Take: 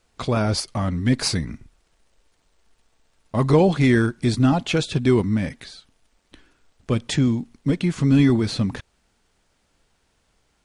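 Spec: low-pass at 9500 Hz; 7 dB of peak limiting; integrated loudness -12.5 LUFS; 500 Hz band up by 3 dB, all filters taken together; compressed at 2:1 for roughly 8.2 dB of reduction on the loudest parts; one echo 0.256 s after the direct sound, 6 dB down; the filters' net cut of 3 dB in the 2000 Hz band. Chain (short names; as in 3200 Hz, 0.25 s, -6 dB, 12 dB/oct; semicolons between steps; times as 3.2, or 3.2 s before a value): LPF 9500 Hz; bell 500 Hz +4 dB; bell 2000 Hz -4 dB; compressor 2:1, threshold -24 dBFS; limiter -19.5 dBFS; echo 0.256 s -6 dB; gain +15.5 dB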